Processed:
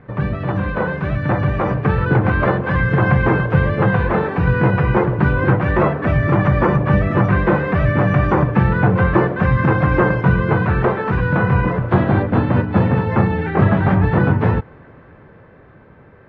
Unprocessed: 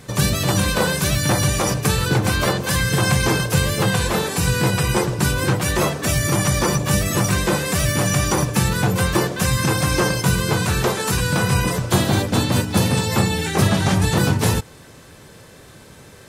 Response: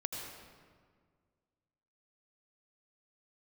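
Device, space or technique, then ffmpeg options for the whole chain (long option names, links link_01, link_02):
action camera in a waterproof case: -af "lowpass=frequency=1900:width=0.5412,lowpass=frequency=1900:width=1.3066,dynaudnorm=framelen=230:gausssize=13:maxgain=11.5dB,volume=-1dB" -ar 32000 -c:a aac -b:a 64k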